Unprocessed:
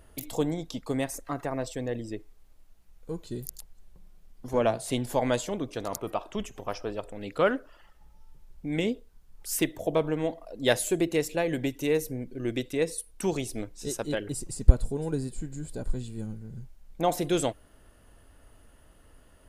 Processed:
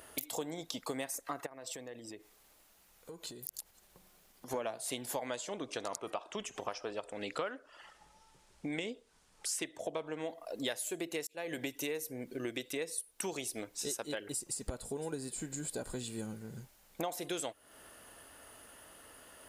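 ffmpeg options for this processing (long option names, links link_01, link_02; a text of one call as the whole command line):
ffmpeg -i in.wav -filter_complex "[0:a]asettb=1/sr,asplit=3[link_01][link_02][link_03];[link_01]atrim=end=1.464[link_04];[link_02]atrim=start=1.46:end=4.51,asetpts=PTS-STARTPTS,afade=type=in:duration=0.004:curve=qsin,afade=type=out:start_time=3.046:duration=0.004:curve=qsin,acompressor=threshold=-44dB:ratio=16:attack=3.2:release=140:knee=1:detection=peak[link_05];[link_03]atrim=start=4.506[link_06];[link_04][link_05]acrossfade=duration=0.004:curve1=hsin:curve2=qsin[link_07];[link_07][link_06]acrossfade=duration=0.004:curve1=qsin:curve2=hsin,asettb=1/sr,asplit=3[link_08][link_09][link_10];[link_08]atrim=end=5.264[link_11];[link_09]atrim=start=5.26:end=10.26,asetpts=PTS-STARTPTS,afade=type=in:duration=0.004:curve=qsin,afade=type=out:start_time=4.996:duration=0.004:curve=qsin,lowpass=frequency=9400:width=0.5412,lowpass=frequency=9400:width=1.3066[link_12];[link_10]atrim=start=10.256[link_13];[link_11][link_12]acrossfade=duration=0.004:curve1=hsin:curve2=qsin[link_14];[link_14][link_13]acrossfade=duration=0.004:curve1=qsin:curve2=hsin,asplit=2[link_15][link_16];[link_15]atrim=end=11.27,asetpts=PTS-STARTPTS,afade=type=out:start_time=11.266:duration=0.004:curve=hsin[link_17];[link_16]atrim=start=11.27,asetpts=PTS-STARTPTS,afade=type=in:duration=0.4[link_18];[link_17][link_18]concat=n=2:v=0:a=1,highpass=frequency=680:poles=1,highshelf=frequency=8600:gain=4.5,acompressor=threshold=-44dB:ratio=6,volume=8dB" out.wav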